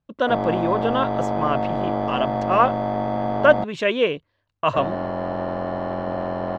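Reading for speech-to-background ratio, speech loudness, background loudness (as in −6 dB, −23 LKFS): 3.0 dB, −22.5 LKFS, −25.5 LKFS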